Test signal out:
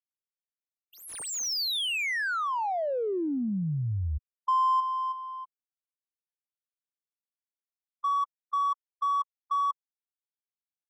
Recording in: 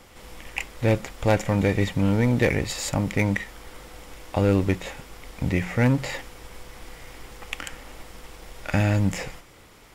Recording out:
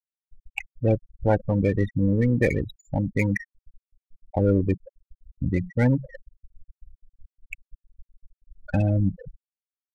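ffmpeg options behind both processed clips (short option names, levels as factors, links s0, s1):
-af "afftfilt=real='re*gte(hypot(re,im),0.141)':imag='im*gte(hypot(re,im),0.141)':win_size=1024:overlap=0.75,adynamicsmooth=sensitivity=7.5:basefreq=2400"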